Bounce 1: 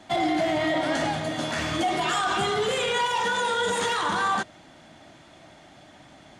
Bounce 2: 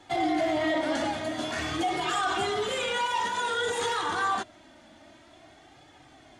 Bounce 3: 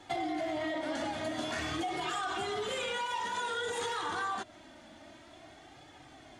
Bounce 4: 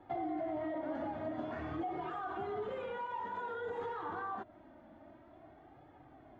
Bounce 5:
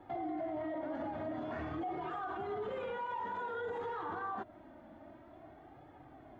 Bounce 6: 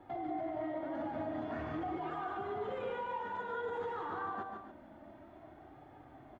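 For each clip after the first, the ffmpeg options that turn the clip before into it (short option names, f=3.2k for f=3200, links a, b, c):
-af "flanger=delay=2.3:depth=1.2:regen=-21:speed=0.51:shape=triangular"
-af "acompressor=threshold=-32dB:ratio=6"
-af "lowpass=1.1k,volume=-2.5dB"
-af "alimiter=level_in=10.5dB:limit=-24dB:level=0:latency=1:release=41,volume=-10.5dB,volume=2.5dB"
-af "aecho=1:1:147|184|255|284:0.531|0.211|0.112|0.224,volume=-1dB"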